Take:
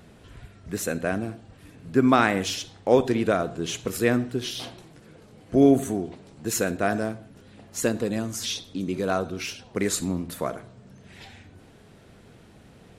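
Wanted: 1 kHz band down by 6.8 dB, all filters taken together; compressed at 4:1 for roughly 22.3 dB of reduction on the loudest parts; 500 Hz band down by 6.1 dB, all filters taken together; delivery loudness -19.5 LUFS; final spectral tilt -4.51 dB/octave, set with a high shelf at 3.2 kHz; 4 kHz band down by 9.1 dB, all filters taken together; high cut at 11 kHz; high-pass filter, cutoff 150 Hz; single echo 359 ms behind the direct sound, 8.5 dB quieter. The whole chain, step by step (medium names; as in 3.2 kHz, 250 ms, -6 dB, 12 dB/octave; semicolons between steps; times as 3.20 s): high-pass 150 Hz; low-pass 11 kHz; peaking EQ 500 Hz -6 dB; peaking EQ 1 kHz -6.5 dB; treble shelf 3.2 kHz -6 dB; peaking EQ 4 kHz -7 dB; compression 4:1, threshold -44 dBFS; delay 359 ms -8.5 dB; trim +27 dB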